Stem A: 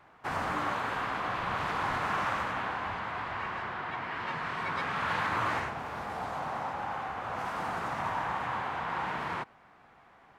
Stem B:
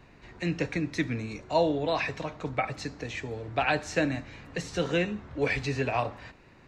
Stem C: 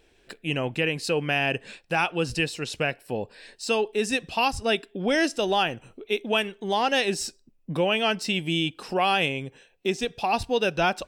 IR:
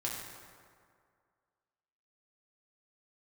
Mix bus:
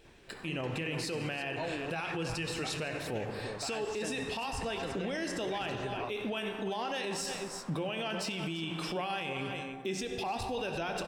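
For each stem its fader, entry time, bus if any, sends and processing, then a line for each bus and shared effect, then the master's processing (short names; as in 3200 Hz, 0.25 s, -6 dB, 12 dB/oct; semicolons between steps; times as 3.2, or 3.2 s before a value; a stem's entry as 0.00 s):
-19.5 dB, 0.10 s, no send, no echo send, AGC gain up to 8.5 dB; soft clip -28.5 dBFS, distortion -8 dB
-0.5 dB, 0.05 s, no send, no echo send, auto duck -9 dB, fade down 0.20 s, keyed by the third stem
-2.5 dB, 0.00 s, send -4.5 dB, echo send -9.5 dB, compressor, threshold -25 dBFS, peak gain reduction 7.5 dB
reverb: on, RT60 2.1 s, pre-delay 4 ms
echo: echo 0.34 s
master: limiter -27 dBFS, peak gain reduction 13 dB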